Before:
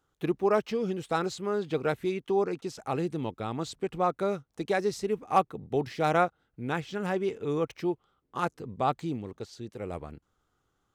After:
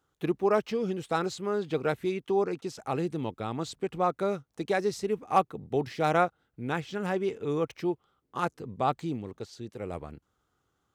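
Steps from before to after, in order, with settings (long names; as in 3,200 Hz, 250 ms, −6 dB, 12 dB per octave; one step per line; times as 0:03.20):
high-pass filter 46 Hz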